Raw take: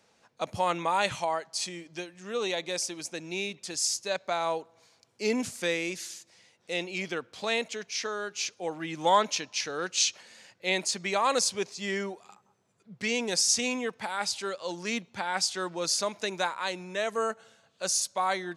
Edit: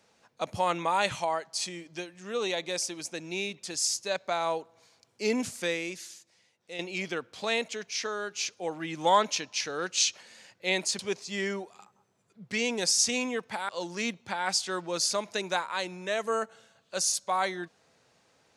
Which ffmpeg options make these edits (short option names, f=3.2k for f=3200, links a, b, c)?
-filter_complex "[0:a]asplit=4[a][b][c][d];[a]atrim=end=6.79,asetpts=PTS-STARTPTS,afade=t=out:st=5.54:d=1.25:c=qua:silence=0.375837[e];[b]atrim=start=6.79:end=10.992,asetpts=PTS-STARTPTS,afade=t=in:d=0.004:c=hsin:silence=0.375837[f];[c]atrim=start=11.488:end=14.192[g];[d]atrim=start=14.568[h];[e][f]concat=n=2:v=0:a=1[i];[i][g]acrossfade=d=0.004:c1=hsin:c2=hsin[j];[j][h]acrossfade=d=0.004:c1=hsin:c2=hsin"